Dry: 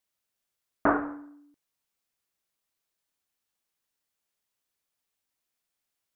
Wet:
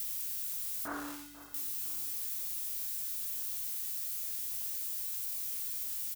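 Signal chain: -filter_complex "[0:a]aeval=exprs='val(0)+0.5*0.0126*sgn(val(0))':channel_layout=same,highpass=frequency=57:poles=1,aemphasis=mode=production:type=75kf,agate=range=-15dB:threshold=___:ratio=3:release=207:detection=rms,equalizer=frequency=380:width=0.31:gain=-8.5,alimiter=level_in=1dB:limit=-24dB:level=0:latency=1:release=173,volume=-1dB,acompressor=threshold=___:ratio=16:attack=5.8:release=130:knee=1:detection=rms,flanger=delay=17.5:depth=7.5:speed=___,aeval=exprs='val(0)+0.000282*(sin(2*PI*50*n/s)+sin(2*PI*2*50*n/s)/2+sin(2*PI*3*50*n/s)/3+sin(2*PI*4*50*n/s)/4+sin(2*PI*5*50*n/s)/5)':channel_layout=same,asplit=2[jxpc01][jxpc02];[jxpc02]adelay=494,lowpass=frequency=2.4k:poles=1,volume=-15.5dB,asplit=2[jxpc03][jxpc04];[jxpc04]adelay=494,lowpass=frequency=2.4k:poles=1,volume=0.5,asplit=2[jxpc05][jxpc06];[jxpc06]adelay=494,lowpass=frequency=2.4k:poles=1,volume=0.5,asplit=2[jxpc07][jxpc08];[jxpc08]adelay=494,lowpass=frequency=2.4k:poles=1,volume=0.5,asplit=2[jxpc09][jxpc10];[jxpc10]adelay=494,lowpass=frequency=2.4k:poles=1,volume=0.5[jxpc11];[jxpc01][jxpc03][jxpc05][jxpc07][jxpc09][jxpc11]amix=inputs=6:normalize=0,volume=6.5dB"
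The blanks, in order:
-30dB, -37dB, 0.43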